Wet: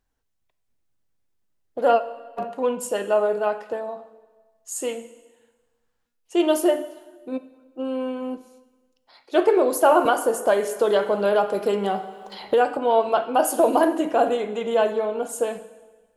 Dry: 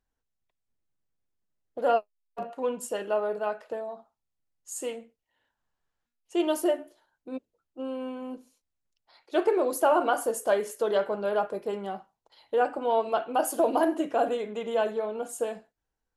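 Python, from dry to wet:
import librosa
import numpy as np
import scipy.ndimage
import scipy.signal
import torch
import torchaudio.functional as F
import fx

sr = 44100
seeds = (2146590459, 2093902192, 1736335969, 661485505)

y = fx.rev_plate(x, sr, seeds[0], rt60_s=1.3, hf_ratio=0.95, predelay_ms=0, drr_db=12.0)
y = fx.band_squash(y, sr, depth_pct=70, at=(10.05, 12.77))
y = y * librosa.db_to_amplitude(6.0)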